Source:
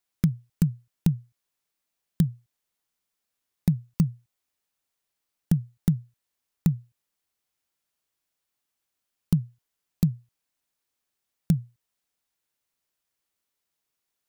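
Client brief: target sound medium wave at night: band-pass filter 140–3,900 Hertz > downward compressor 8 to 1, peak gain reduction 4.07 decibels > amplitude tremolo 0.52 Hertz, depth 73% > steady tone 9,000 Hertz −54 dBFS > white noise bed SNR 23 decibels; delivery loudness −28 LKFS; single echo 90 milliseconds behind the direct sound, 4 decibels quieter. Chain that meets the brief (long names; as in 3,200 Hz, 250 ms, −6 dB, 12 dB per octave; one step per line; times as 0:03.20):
band-pass filter 140–3,900 Hz
single-tap delay 90 ms −4 dB
downward compressor 8 to 1, threshold −21 dBFS
amplitude tremolo 0.52 Hz, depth 73%
steady tone 9,000 Hz −54 dBFS
white noise bed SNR 23 dB
level +5.5 dB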